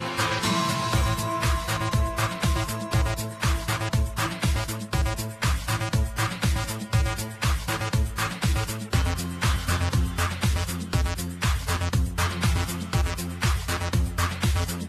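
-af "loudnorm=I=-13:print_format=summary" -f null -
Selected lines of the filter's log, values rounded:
Input Integrated:    -26.2 LUFS
Input True Peak:      -9.8 dBTP
Input LRA:             0.7 LU
Input Threshold:     -36.2 LUFS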